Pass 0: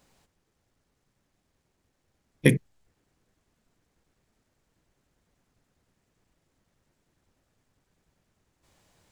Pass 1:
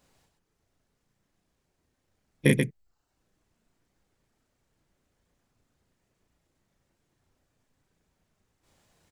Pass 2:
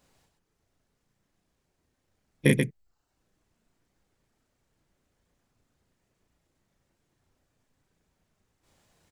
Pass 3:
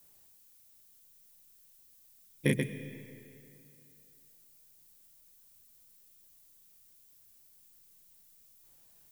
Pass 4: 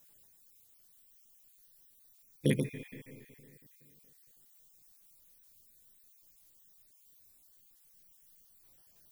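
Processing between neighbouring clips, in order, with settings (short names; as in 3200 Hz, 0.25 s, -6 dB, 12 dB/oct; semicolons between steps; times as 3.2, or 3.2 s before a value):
reverb removal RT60 0.6 s; loudspeakers at several distances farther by 12 m -1 dB, 46 m -4 dB; gain -3.5 dB
nothing audible
added noise violet -55 dBFS; on a send at -12 dB: reverb RT60 2.7 s, pre-delay 85 ms; on the sum: gain -6.5 dB
random spectral dropouts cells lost 33%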